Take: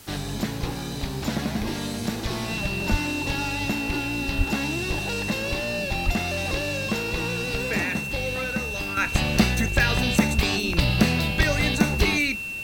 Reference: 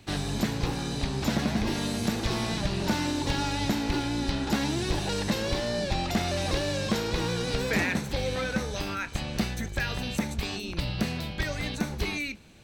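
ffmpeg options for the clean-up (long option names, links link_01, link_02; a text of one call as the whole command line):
ffmpeg -i in.wav -filter_complex "[0:a]bandreject=frequency=2700:width=30,asplit=3[link_01][link_02][link_03];[link_01]afade=type=out:start_time=2.9:duration=0.02[link_04];[link_02]highpass=frequency=140:width=0.5412,highpass=frequency=140:width=1.3066,afade=type=in:start_time=2.9:duration=0.02,afade=type=out:start_time=3.02:duration=0.02[link_05];[link_03]afade=type=in:start_time=3.02:duration=0.02[link_06];[link_04][link_05][link_06]amix=inputs=3:normalize=0,asplit=3[link_07][link_08][link_09];[link_07]afade=type=out:start_time=4.37:duration=0.02[link_10];[link_08]highpass=frequency=140:width=0.5412,highpass=frequency=140:width=1.3066,afade=type=in:start_time=4.37:duration=0.02,afade=type=out:start_time=4.49:duration=0.02[link_11];[link_09]afade=type=in:start_time=4.49:duration=0.02[link_12];[link_10][link_11][link_12]amix=inputs=3:normalize=0,asplit=3[link_13][link_14][link_15];[link_13]afade=type=out:start_time=6.05:duration=0.02[link_16];[link_14]highpass=frequency=140:width=0.5412,highpass=frequency=140:width=1.3066,afade=type=in:start_time=6.05:duration=0.02,afade=type=out:start_time=6.17:duration=0.02[link_17];[link_15]afade=type=in:start_time=6.17:duration=0.02[link_18];[link_16][link_17][link_18]amix=inputs=3:normalize=0,afwtdn=0.0045,asetnsamples=nb_out_samples=441:pad=0,asendcmd='8.97 volume volume -9dB',volume=0dB" out.wav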